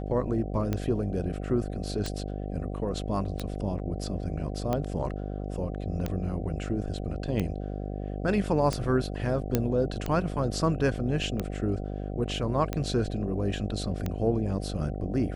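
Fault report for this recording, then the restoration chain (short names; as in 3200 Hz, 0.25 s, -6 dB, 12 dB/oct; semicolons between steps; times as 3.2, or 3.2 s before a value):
buzz 50 Hz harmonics 15 -34 dBFS
tick 45 rpm -16 dBFS
9.55 pop -9 dBFS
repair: de-click; de-hum 50 Hz, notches 15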